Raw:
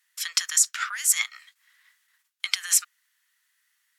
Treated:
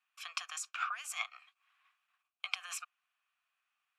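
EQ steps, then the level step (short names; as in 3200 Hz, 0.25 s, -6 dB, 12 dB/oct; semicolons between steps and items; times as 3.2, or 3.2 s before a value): vowel filter a; bell 4700 Hz -5 dB 1.5 oct; +9.5 dB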